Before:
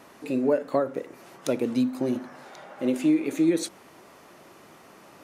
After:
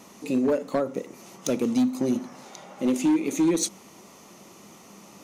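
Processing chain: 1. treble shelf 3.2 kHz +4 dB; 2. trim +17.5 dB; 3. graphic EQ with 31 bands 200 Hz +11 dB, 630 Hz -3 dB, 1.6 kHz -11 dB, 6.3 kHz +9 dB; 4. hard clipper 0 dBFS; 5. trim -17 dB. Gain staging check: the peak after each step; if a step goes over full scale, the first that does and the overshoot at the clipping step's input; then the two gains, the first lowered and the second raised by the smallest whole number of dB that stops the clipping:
-10.5 dBFS, +7.0 dBFS, +9.5 dBFS, 0.0 dBFS, -17.0 dBFS; step 2, 9.5 dB; step 2 +7.5 dB, step 5 -7 dB

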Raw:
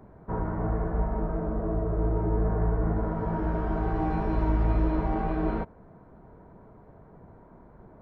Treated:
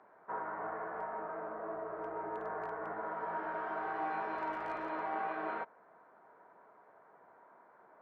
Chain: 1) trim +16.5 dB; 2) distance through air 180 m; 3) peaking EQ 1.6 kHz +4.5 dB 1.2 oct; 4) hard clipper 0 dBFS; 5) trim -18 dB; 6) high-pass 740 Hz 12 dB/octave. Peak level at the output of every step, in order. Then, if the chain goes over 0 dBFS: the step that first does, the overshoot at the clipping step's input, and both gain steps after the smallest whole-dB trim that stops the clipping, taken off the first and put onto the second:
+3.0 dBFS, +3.0 dBFS, +3.0 dBFS, 0.0 dBFS, -18.0 dBFS, -26.0 dBFS; step 1, 3.0 dB; step 1 +13.5 dB, step 5 -15 dB

